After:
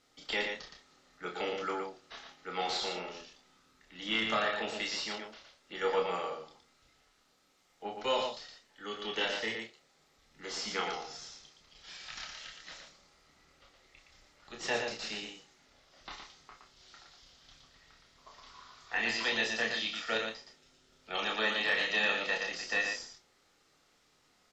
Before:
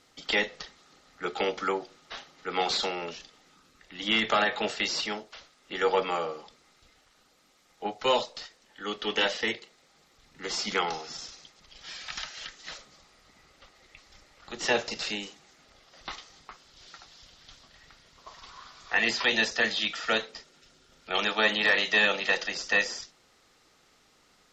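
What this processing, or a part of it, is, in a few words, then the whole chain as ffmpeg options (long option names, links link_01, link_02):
slapback doubling: -filter_complex "[0:a]asplit=2[link_01][link_02];[link_02]adelay=27,volume=-6dB[link_03];[link_01][link_03]amix=inputs=2:normalize=0,asplit=3[link_04][link_05][link_06];[link_05]adelay=34,volume=-7.5dB[link_07];[link_06]adelay=117,volume=-5dB[link_08];[link_04][link_07][link_08]amix=inputs=3:normalize=0,volume=-8.5dB"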